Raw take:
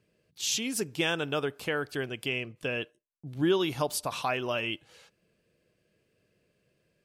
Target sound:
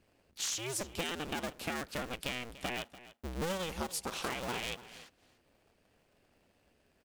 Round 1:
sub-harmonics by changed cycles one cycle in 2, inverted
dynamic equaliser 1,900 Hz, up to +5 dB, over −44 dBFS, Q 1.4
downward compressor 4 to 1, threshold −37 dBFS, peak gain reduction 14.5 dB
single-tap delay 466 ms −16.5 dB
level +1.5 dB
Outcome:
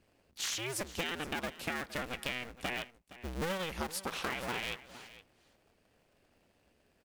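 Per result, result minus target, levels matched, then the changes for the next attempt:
echo 175 ms late; 8,000 Hz band −2.5 dB
change: single-tap delay 291 ms −16.5 dB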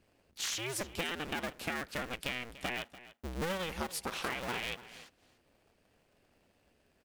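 8,000 Hz band −2.5 dB
change: dynamic equaliser 7,100 Hz, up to +5 dB, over −44 dBFS, Q 1.4

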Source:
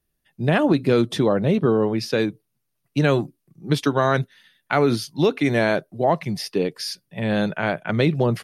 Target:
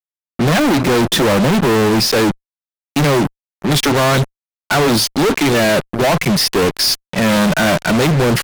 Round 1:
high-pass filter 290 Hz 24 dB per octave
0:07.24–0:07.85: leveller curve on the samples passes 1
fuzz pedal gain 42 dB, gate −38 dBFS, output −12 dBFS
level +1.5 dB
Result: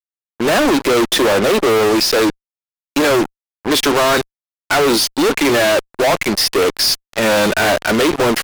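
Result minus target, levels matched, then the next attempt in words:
125 Hz band −12.0 dB
high-pass filter 130 Hz 24 dB per octave
0:07.24–0:07.85: leveller curve on the samples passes 1
fuzz pedal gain 42 dB, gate −38 dBFS, output −12 dBFS
level +1.5 dB

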